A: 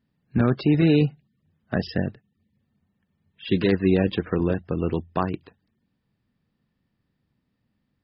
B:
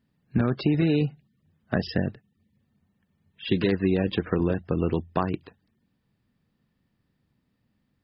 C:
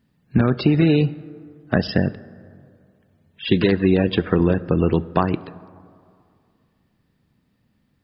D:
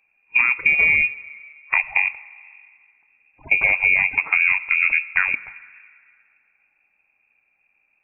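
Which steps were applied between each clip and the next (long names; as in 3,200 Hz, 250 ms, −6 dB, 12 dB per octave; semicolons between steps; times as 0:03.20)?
downward compressor, threshold −20 dBFS, peak gain reduction 6.5 dB; level +1.5 dB
dense smooth reverb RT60 2.3 s, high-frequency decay 0.4×, DRR 17 dB; level +6.5 dB
voice inversion scrambler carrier 2,600 Hz; level −1 dB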